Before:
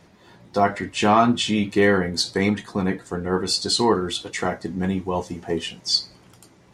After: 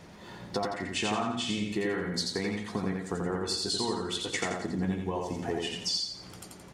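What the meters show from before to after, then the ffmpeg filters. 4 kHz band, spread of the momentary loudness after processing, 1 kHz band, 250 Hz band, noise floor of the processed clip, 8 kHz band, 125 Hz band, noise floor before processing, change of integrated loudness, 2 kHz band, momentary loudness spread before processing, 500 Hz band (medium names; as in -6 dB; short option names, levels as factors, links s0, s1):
-7.5 dB, 6 LU, -12.5 dB, -9.5 dB, -49 dBFS, -6.0 dB, -8.0 dB, -53 dBFS, -9.5 dB, -9.0 dB, 9 LU, -10.5 dB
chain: -filter_complex "[0:a]acompressor=threshold=0.0251:ratio=10,asplit=2[s0][s1];[s1]aecho=0:1:86|172|258|344|430:0.708|0.29|0.119|0.0488|0.02[s2];[s0][s2]amix=inputs=2:normalize=0,volume=1.33"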